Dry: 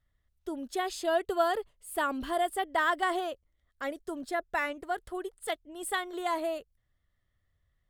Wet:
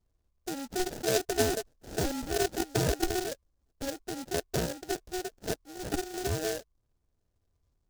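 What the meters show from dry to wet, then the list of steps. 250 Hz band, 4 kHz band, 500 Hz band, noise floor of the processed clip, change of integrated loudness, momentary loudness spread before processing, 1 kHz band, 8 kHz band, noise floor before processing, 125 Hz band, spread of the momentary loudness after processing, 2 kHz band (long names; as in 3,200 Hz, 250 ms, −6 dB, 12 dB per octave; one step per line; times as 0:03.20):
+3.0 dB, +3.5 dB, +0.5 dB, −77 dBFS, −0.5 dB, 11 LU, −7.5 dB, +8.5 dB, −76 dBFS, can't be measured, 10 LU, −5.5 dB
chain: sample-rate reduction 1,100 Hz, jitter 0%
short delay modulated by noise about 5,100 Hz, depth 0.091 ms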